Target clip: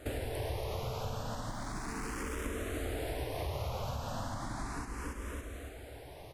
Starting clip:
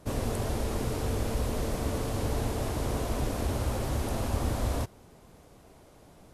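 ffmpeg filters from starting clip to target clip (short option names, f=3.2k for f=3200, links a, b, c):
-filter_complex "[0:a]equalizer=f=1.7k:w=0.63:g=6.5,asettb=1/sr,asplit=3[a][b][c];[a]atrim=end=1.514[d];[b]atrim=start=1.51:end=2.46,asetpts=PTS-STARTPTS,afade=t=in:d=0.004:c=qsin,afade=t=out:st=0.946:d=0.004:c=qsin,volume=35dB,asoftclip=hard,volume=-35dB[e];[c]atrim=start=2.456[f];[d][e]acrossfade=d=0.004:c1=hsin:c2=qsin[g];[g][f]acrossfade=d=0.004:c1=qsin:c2=hsin,aecho=1:1:280|560|840|1120|1400:0.473|0.208|0.0916|0.0403|0.0177,acompressor=threshold=-37dB:ratio=6,asplit=2[h][i];[i]afreqshift=0.35[j];[h][j]amix=inputs=2:normalize=1,volume=5dB"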